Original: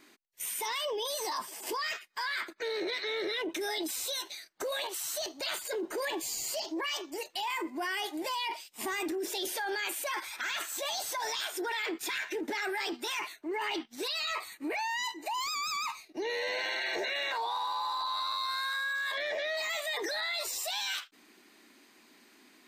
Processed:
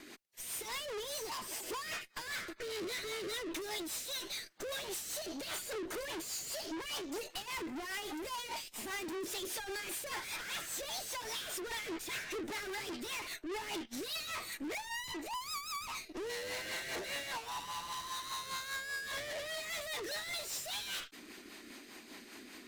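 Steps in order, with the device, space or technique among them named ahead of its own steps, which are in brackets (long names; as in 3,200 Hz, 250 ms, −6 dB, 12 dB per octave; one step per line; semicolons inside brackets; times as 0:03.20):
overdriven rotary cabinet (tube saturation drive 50 dB, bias 0.55; rotating-speaker cabinet horn 5 Hz)
level +12.5 dB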